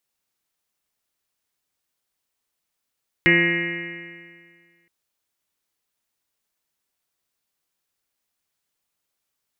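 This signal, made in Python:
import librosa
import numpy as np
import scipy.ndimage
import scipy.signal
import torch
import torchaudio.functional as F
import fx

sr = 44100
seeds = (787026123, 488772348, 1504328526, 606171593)

y = fx.additive_stiff(sr, length_s=1.62, hz=170.0, level_db=-21.5, upper_db=(3.5, -8.5, -17.5, -19.5, -18.5, -17, -19.0, -2, 5.5, 5, -3, -9, -7.0), decay_s=1.88, stiffness=0.0024)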